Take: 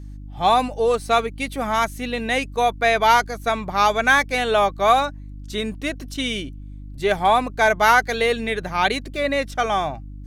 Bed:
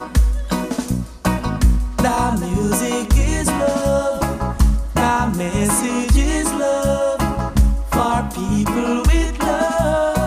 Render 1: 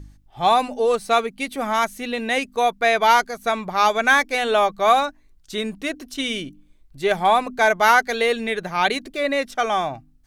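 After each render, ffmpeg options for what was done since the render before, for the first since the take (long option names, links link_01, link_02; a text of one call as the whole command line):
ffmpeg -i in.wav -af "bandreject=frequency=50:width_type=h:width=4,bandreject=frequency=100:width_type=h:width=4,bandreject=frequency=150:width_type=h:width=4,bandreject=frequency=200:width_type=h:width=4,bandreject=frequency=250:width_type=h:width=4,bandreject=frequency=300:width_type=h:width=4" out.wav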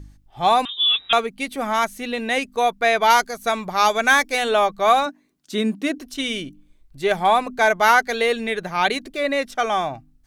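ffmpeg -i in.wav -filter_complex "[0:a]asettb=1/sr,asplit=3[link_01][link_02][link_03];[link_01]atrim=end=0.654[link_04];[link_02]atrim=start=0.65:end=1.13,asetpts=PTS-STARTPTS,afade=type=in:duration=0.004:curve=qsin,afade=type=out:start_time=0.476:duration=0.004:curve=qsin,lowpass=frequency=3300:width_type=q:width=0.5098,lowpass=frequency=3300:width_type=q:width=0.6013,lowpass=frequency=3300:width_type=q:width=0.9,lowpass=frequency=3300:width_type=q:width=2.563,afreqshift=-3900[link_05];[link_03]atrim=start=1.126[link_06];[link_04][link_05]acrossfade=duration=0.004:curve1=hsin:curve2=qsin[link_07];[link_07][link_06]acrossfade=duration=0.004:curve1=qsin:curve2=hsin,asettb=1/sr,asplit=3[link_08][link_09][link_10];[link_08]atrim=end=3.104[link_11];[link_09]atrim=start=3.1:end=4.49,asetpts=PTS-STARTPTS,afade=type=in:duration=0.004:curve=qsin,afade=type=out:start_time=1.386:duration=0.004:curve=qsin,bass=frequency=250:gain=0,treble=frequency=4000:gain=5[link_12];[link_10]atrim=start=4.486[link_13];[link_11][link_12]acrossfade=duration=0.004:curve1=hsin:curve2=qsin[link_14];[link_14][link_13]acrossfade=duration=0.004:curve1=qsin:curve2=hsin,asettb=1/sr,asplit=3[link_15][link_16][link_17];[link_15]atrim=end=5.064[link_18];[link_16]atrim=start=5.06:end=5.98,asetpts=PTS-STARTPTS,afade=type=in:duration=0.004:curve=qsin,afade=type=out:start_time=0.916:duration=0.004:curve=qsin,highpass=frequency=230:width_type=q:width=2.6[link_19];[link_17]atrim=start=5.976[link_20];[link_18][link_19]acrossfade=duration=0.004:curve1=hsin:curve2=qsin[link_21];[link_21][link_20]acrossfade=duration=0.004:curve1=qsin:curve2=hsin" out.wav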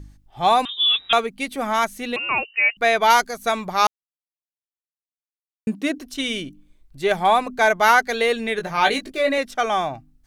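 ffmpeg -i in.wav -filter_complex "[0:a]asettb=1/sr,asplit=3[link_01][link_02][link_03];[link_01]atrim=end=2.164[link_04];[link_02]atrim=start=2.16:end=2.77,asetpts=PTS-STARTPTS,afade=type=in:duration=0.004:curve=qsin,afade=type=out:start_time=0.606:duration=0.004:curve=qsin,lowpass=frequency=2600:width_type=q:width=0.5098,lowpass=frequency=2600:width_type=q:width=0.6013,lowpass=frequency=2600:width_type=q:width=0.9,lowpass=frequency=2600:width_type=q:width=2.563,afreqshift=-3000[link_05];[link_03]atrim=start=2.766[link_06];[link_04][link_05]acrossfade=duration=0.004:curve1=hsin:curve2=qsin[link_07];[link_07][link_06]acrossfade=duration=0.004:curve1=qsin:curve2=hsin,asettb=1/sr,asplit=3[link_08][link_09][link_10];[link_08]atrim=end=8.564[link_11];[link_09]atrim=start=8.56:end=9.38,asetpts=PTS-STARTPTS,afade=type=in:duration=0.004:curve=qsin,afade=type=out:start_time=0.816:duration=0.004:curve=qsin,asplit=2[link_12][link_13];[link_13]adelay=19,volume=-4.5dB[link_14];[link_12][link_14]amix=inputs=2:normalize=0,atrim=end_sample=36162[link_15];[link_10]atrim=start=9.376[link_16];[link_11][link_15]acrossfade=duration=0.004:curve1=hsin:curve2=qsin[link_17];[link_17][link_16]acrossfade=duration=0.004:curve1=qsin:curve2=hsin,asplit=3[link_18][link_19][link_20];[link_18]atrim=end=3.87,asetpts=PTS-STARTPTS,afade=type=out:start_time=3.866:duration=0.004:curve=hsin[link_21];[link_19]atrim=start=3.87:end=5.67,asetpts=PTS-STARTPTS,volume=0[link_22];[link_20]atrim=start=5.67,asetpts=PTS-STARTPTS,afade=type=in:duration=0.004:curve=hsin[link_23];[link_21][link_22][link_23]concat=n=3:v=0:a=1" out.wav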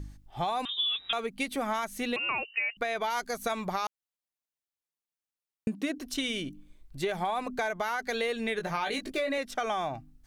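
ffmpeg -i in.wav -af "alimiter=limit=-14dB:level=0:latency=1:release=45,acompressor=threshold=-28dB:ratio=6" out.wav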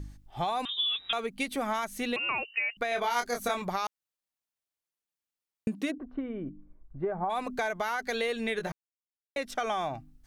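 ffmpeg -i in.wav -filter_complex "[0:a]asettb=1/sr,asplit=3[link_01][link_02][link_03];[link_01]atrim=end=2.894[link_04];[link_02]atrim=start=2.89:end=3.62,asetpts=PTS-STARTPTS,afade=type=in:duration=0.004:curve=qsin,afade=type=out:start_time=0.726:duration=0.004:curve=qsin,asplit=2[link_05][link_06];[link_06]adelay=25,volume=-4dB[link_07];[link_05][link_07]amix=inputs=2:normalize=0,atrim=end_sample=32193[link_08];[link_03]atrim=start=3.616[link_09];[link_04][link_08]acrossfade=duration=0.004:curve1=hsin:curve2=qsin[link_10];[link_10][link_09]acrossfade=duration=0.004:curve1=qsin:curve2=hsin,asplit=3[link_11][link_12][link_13];[link_11]afade=type=out:start_time=5.9:duration=0.02[link_14];[link_12]lowpass=frequency=1300:width=0.5412,lowpass=frequency=1300:width=1.3066,afade=type=in:start_time=5.9:duration=0.02,afade=type=out:start_time=7.29:duration=0.02[link_15];[link_13]afade=type=in:start_time=7.29:duration=0.02[link_16];[link_14][link_15][link_16]amix=inputs=3:normalize=0,asplit=3[link_17][link_18][link_19];[link_17]atrim=end=8.72,asetpts=PTS-STARTPTS,afade=type=out:start_time=8.716:duration=0.004:curve=hsin[link_20];[link_18]atrim=start=8.72:end=9.36,asetpts=PTS-STARTPTS,volume=0[link_21];[link_19]atrim=start=9.36,asetpts=PTS-STARTPTS,afade=type=in:duration=0.004:curve=hsin[link_22];[link_20][link_21][link_22]concat=n=3:v=0:a=1" out.wav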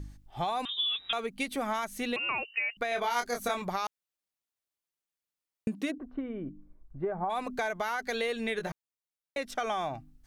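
ffmpeg -i in.wav -af "volume=-1dB" out.wav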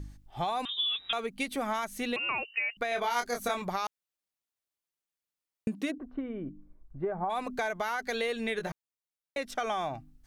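ffmpeg -i in.wav -af anull out.wav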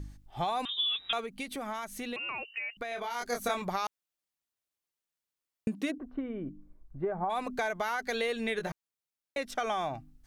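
ffmpeg -i in.wav -filter_complex "[0:a]asplit=3[link_01][link_02][link_03];[link_01]afade=type=out:start_time=1.2:duration=0.02[link_04];[link_02]acompressor=threshold=-37dB:ratio=2:attack=3.2:release=140:knee=1:detection=peak,afade=type=in:start_time=1.2:duration=0.02,afade=type=out:start_time=3.2:duration=0.02[link_05];[link_03]afade=type=in:start_time=3.2:duration=0.02[link_06];[link_04][link_05][link_06]amix=inputs=3:normalize=0" out.wav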